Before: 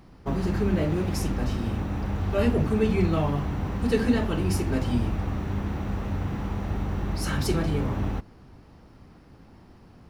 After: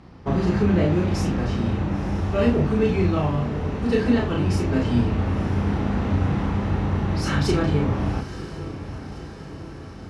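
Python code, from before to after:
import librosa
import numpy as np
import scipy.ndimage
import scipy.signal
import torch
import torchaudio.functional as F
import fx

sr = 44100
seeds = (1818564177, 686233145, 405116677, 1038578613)

y = scipy.signal.sosfilt(scipy.signal.butter(2, 48.0, 'highpass', fs=sr, output='sos'), x)
y = fx.high_shelf(y, sr, hz=7000.0, db=6.0)
y = fx.rider(y, sr, range_db=10, speed_s=2.0)
y = fx.air_absorb(y, sr, metres=100.0)
y = fx.doubler(y, sr, ms=34.0, db=-2.5)
y = fx.echo_diffused(y, sr, ms=981, feedback_pct=62, wet_db=-13)
y = F.gain(torch.from_numpy(y), 2.0).numpy()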